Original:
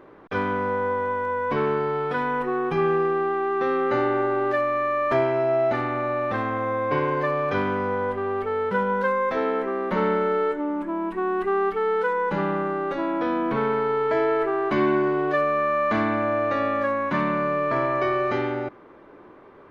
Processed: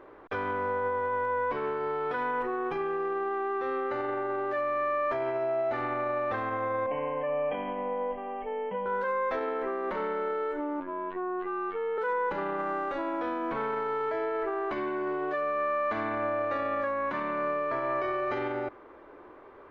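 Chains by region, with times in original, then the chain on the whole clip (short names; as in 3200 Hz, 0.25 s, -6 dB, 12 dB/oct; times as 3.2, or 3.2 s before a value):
6.86–8.86 brick-wall FIR low-pass 3300 Hz + fixed phaser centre 370 Hz, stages 6
10.8–11.98 steep low-pass 4100 Hz + robotiser 91.3 Hz
12.57–14.09 bell 400 Hz -7.5 dB 0.21 oct + buzz 400 Hz, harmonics 21, -53 dBFS -7 dB/oct
whole clip: high shelf 3500 Hz -8 dB; limiter -21.5 dBFS; bell 170 Hz -13.5 dB 1.1 oct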